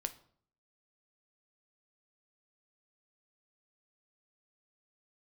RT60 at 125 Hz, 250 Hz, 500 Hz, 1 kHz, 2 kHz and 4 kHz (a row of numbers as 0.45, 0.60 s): 0.70, 0.65, 0.60, 0.55, 0.45, 0.40 s